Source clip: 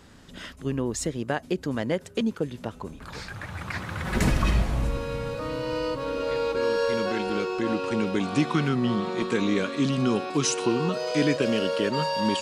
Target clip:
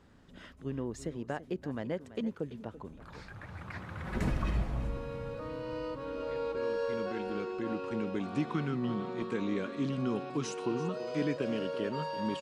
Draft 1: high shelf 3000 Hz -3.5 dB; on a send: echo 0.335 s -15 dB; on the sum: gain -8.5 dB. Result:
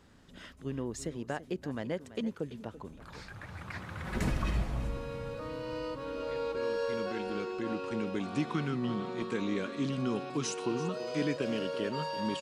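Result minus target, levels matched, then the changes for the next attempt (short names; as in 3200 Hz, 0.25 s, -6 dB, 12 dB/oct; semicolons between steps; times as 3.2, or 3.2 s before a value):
8000 Hz band +6.0 dB
change: high shelf 3000 Hz -11 dB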